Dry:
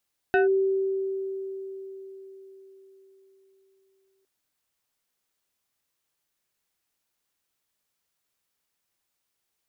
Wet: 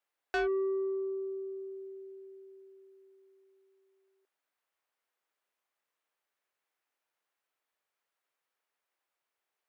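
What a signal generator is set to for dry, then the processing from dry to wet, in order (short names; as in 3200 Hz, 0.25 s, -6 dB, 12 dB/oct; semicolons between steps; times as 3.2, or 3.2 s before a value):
FM tone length 3.91 s, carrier 386 Hz, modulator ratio 2.88, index 1.2, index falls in 0.14 s linear, decay 4.51 s, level -16.5 dB
three-band isolator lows -21 dB, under 370 Hz, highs -13 dB, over 2600 Hz; soft clip -27 dBFS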